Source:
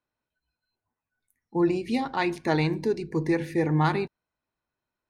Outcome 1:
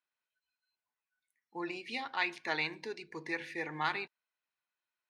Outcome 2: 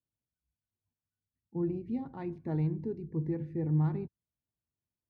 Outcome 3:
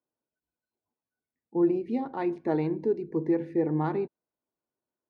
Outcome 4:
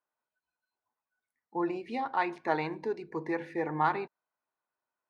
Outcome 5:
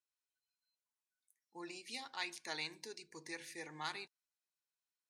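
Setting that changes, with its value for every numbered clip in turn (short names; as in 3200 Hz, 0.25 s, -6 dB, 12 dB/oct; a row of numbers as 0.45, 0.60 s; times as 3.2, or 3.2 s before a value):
band-pass, frequency: 2600, 100, 380, 1000, 7300 Hz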